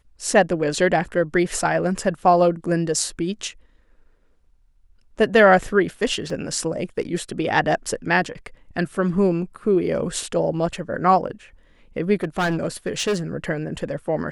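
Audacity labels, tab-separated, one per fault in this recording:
6.300000	6.300000	drop-out 3 ms
12.230000	13.170000	clipping −17.5 dBFS

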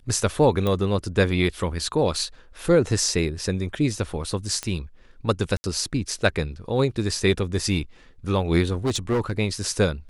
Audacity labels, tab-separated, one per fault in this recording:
0.670000	0.670000	click −13 dBFS
4.630000	4.630000	click −13 dBFS
5.570000	5.640000	drop-out 70 ms
8.720000	9.320000	clipping −18.5 dBFS

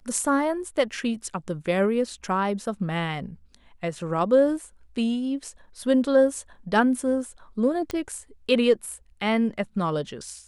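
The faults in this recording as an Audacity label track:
7.910000	7.910000	click −16 dBFS

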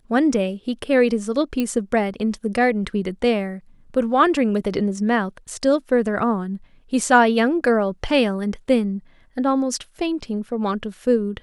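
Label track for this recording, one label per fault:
1.600000	1.600000	click −11 dBFS

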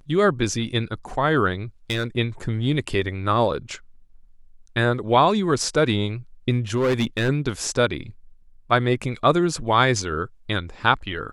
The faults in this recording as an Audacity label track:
1.900000	2.060000	clipping −19 dBFS
6.760000	7.300000	clipping −16.5 dBFS

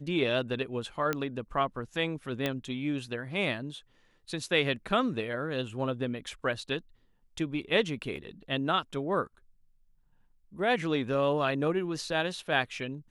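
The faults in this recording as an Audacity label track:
1.130000	1.130000	click −15 dBFS
2.460000	2.460000	click −15 dBFS
8.160000	8.170000	drop-out 5.1 ms

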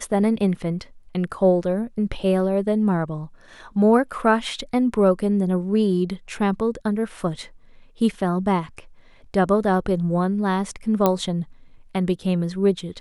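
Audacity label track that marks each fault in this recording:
11.060000	11.060000	click −5 dBFS

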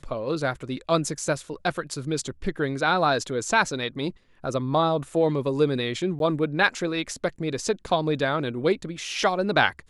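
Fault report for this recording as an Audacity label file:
6.190000	6.200000	drop-out 12 ms

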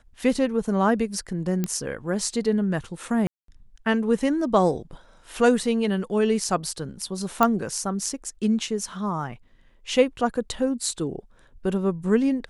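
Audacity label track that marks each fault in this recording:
1.640000	1.640000	click −12 dBFS
3.270000	3.480000	drop-out 213 ms
7.430000	7.430000	click −6 dBFS

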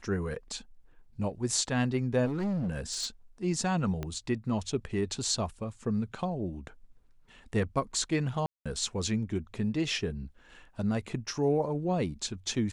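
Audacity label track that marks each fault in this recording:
2.250000	3.060000	clipping −28 dBFS
4.030000	4.030000	click −21 dBFS
8.460000	8.660000	drop-out 196 ms

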